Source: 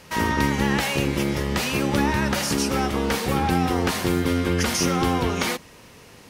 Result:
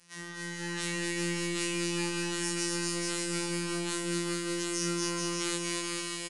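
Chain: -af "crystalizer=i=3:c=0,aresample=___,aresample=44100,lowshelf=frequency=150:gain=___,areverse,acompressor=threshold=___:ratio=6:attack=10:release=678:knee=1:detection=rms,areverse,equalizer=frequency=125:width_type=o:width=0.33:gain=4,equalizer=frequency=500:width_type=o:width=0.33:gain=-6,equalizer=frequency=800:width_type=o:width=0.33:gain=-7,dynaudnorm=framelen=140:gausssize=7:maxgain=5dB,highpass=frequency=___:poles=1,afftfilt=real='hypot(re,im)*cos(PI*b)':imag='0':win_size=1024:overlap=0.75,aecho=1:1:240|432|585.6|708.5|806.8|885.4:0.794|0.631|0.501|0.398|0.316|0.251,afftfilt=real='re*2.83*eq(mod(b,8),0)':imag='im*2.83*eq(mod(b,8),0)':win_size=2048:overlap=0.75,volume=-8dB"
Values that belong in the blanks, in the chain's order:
22050, 2.5, -32dB, 90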